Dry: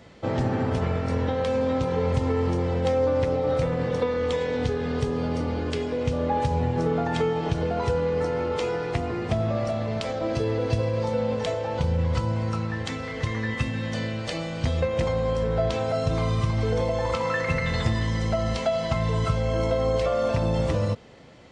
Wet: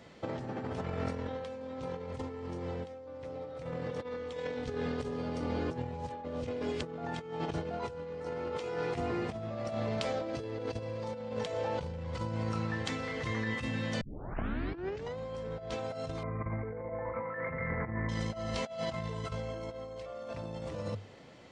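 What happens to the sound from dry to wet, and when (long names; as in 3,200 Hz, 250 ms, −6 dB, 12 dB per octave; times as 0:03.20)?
0:05.71–0:06.83: reverse
0:14.01: tape start 1.17 s
0:16.23–0:18.09: Chebyshev low-pass filter 2,300 Hz, order 8
whole clip: low-shelf EQ 75 Hz −9.5 dB; mains-hum notches 50/100 Hz; compressor whose output falls as the input rises −29 dBFS, ratio −0.5; level −7 dB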